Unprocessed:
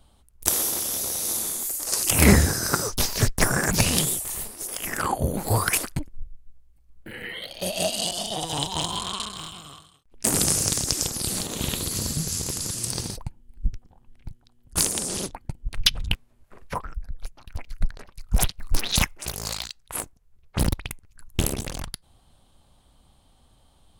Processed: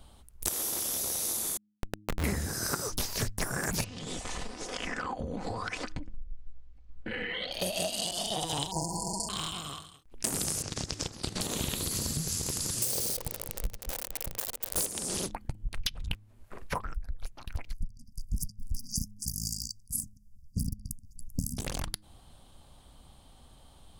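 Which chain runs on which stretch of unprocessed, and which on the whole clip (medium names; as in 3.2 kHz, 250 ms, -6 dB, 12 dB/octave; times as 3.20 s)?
1.57–2.24 s: careless resampling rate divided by 8×, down none, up hold + low-pass 7.6 kHz 24 dB/octave + Schmitt trigger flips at -13.5 dBFS
3.84–7.52 s: Bessel low-pass 4.3 kHz, order 6 + comb 4 ms, depth 44% + compression 16:1, threshold -33 dBFS
8.71–9.29 s: brick-wall FIR band-stop 990–4300 Hz + comb 6.1 ms, depth 79% + short-mantissa float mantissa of 8-bit
10.62–11.41 s: low-pass 4.6 kHz + level held to a coarse grid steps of 16 dB
12.82–14.86 s: zero-crossing glitches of -14.5 dBFS + peaking EQ 520 Hz +14.5 dB 0.96 oct + feedback echo behind a low-pass 224 ms, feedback 37%, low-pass 2.6 kHz, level -13 dB
17.73–21.58 s: brick-wall FIR band-stop 270–4600 Hz + peaking EQ 670 Hz +7 dB 2.9 oct
whole clip: de-hum 104.3 Hz, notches 3; compression 6:1, threshold -33 dBFS; trim +3.5 dB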